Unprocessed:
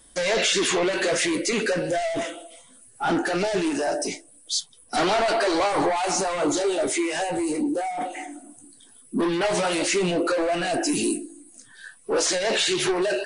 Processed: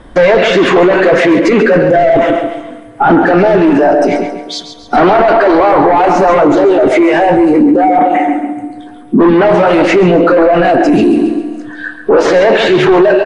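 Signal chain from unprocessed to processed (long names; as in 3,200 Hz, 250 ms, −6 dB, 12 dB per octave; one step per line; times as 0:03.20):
low-pass filter 1,500 Hz 12 dB per octave
repeating echo 136 ms, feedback 39%, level −10 dB
on a send at −20 dB: convolution reverb RT60 2.3 s, pre-delay 4 ms
on the sum: boost into a limiter +25 dB
level −1 dB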